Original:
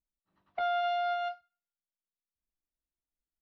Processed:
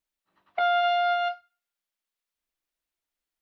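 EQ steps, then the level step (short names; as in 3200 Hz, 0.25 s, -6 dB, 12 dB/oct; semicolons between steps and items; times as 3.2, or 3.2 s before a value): tone controls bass -10 dB, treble -12 dB; high shelf 2700 Hz +12 dB; +6.0 dB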